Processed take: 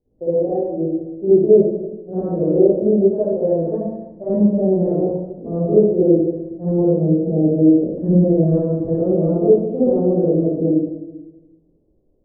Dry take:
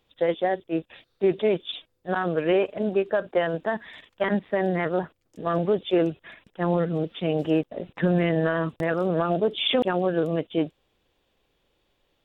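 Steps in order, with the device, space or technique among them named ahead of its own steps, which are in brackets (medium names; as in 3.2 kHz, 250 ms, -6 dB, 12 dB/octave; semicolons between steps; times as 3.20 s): next room (low-pass 510 Hz 24 dB/octave; reverberation RT60 1.1 s, pre-delay 45 ms, DRR -11.5 dB); trim -3 dB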